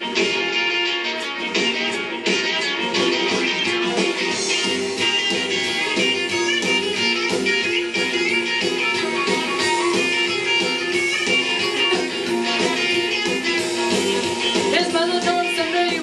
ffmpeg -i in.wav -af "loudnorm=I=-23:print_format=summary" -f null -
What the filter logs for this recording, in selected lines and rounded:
Input Integrated:    -19.0 LUFS
Input True Peak:      -4.4 dBTP
Input LRA:             1.1 LU
Input Threshold:     -29.0 LUFS